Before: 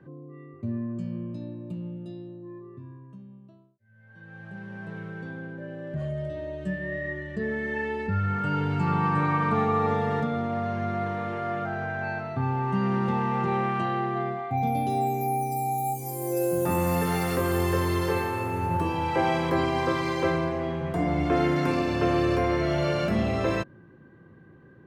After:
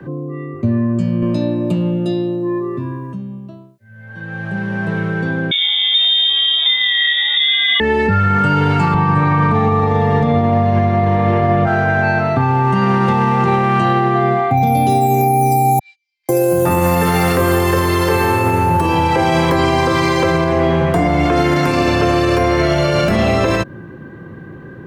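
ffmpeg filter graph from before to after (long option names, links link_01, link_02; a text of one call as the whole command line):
ffmpeg -i in.wav -filter_complex "[0:a]asettb=1/sr,asplit=3[link_01][link_02][link_03];[link_01]atrim=end=1.224[link_04];[link_02]atrim=start=1.22:end=3.13,asetpts=PTS-STARTPTS,afade=type=in:duration=0.004:curve=qsin,afade=type=out:start_time=1.906:duration=0.004:curve=qsin,highpass=frequency=270:poles=1,acontrast=69[link_05];[link_03]atrim=start=3.126[link_06];[link_04][link_05]acrossfade=duration=0.004:curve1=hsin:curve2=qsin[link_07];[link_07][link_06]acrossfade=duration=0.004:curve1=qsin:curve2=hsin,asettb=1/sr,asplit=3[link_08][link_09][link_10];[link_08]atrim=end=5.514[link_11];[link_09]atrim=start=5.51:end=7.8,asetpts=PTS-STARTPTS,afade=type=in:duration=0.004:curve=qsin,afade=type=out:start_time=2.286:duration=0.004:curve=qsin,acontrast=28,lowpass=frequency=3200:width_type=q:width=0.5098,lowpass=frequency=3200:width_type=q:width=0.6013,lowpass=frequency=3200:width_type=q:width=0.9,lowpass=frequency=3200:width_type=q:width=2.563,afreqshift=-3800[link_12];[link_10]atrim=start=7.796[link_13];[link_11][link_12]acrossfade=duration=0.004:curve1=hsin:curve2=qsin[link_14];[link_14][link_13]acrossfade=duration=0.004:curve1=qsin:curve2=hsin,asettb=1/sr,asplit=3[link_15][link_16][link_17];[link_15]atrim=end=8.944[link_18];[link_16]atrim=start=8.94:end=11.67,asetpts=PTS-STARTPTS,afade=type=in:duration=0.004:curve=qsin,afade=type=out:start_time=2.726:duration=0.004:curve=qsin,aemphasis=mode=reproduction:type=bsi,bandreject=frequency=1400:width=20[link_19];[link_17]atrim=start=11.666[link_20];[link_18][link_19]acrossfade=duration=0.004:curve1=hsin:curve2=qsin[link_21];[link_21][link_20]acrossfade=duration=0.004:curve1=qsin:curve2=hsin,asettb=1/sr,asplit=3[link_22][link_23][link_24];[link_22]atrim=end=15.794[link_25];[link_23]atrim=start=15.79:end=16.29,asetpts=PTS-STARTPTS,afade=type=in:duration=0.004:curve=qsin,afade=type=out:start_time=0.496:duration=0.004:curve=qsin,agate=range=-32dB:threshold=-28dB:ratio=16:release=100:detection=peak,asuperpass=centerf=3300:order=8:qfactor=1.2,highshelf=frequency=3000:gain=-11.5[link_26];[link_24]atrim=start=16.286[link_27];[link_25][link_26]acrossfade=duration=0.004:curve1=hsin:curve2=qsin[link_28];[link_28][link_27]acrossfade=duration=0.004:curve1=qsin:curve2=hsin,acrossover=split=120|450|4300[link_29][link_30][link_31][link_32];[link_29]acompressor=threshold=-38dB:ratio=4[link_33];[link_30]acompressor=threshold=-35dB:ratio=4[link_34];[link_31]acompressor=threshold=-32dB:ratio=4[link_35];[link_32]acompressor=threshold=-45dB:ratio=4[link_36];[link_33][link_34][link_35][link_36]amix=inputs=4:normalize=0,alimiter=level_in=23dB:limit=-1dB:release=50:level=0:latency=1,volume=-4.5dB" out.wav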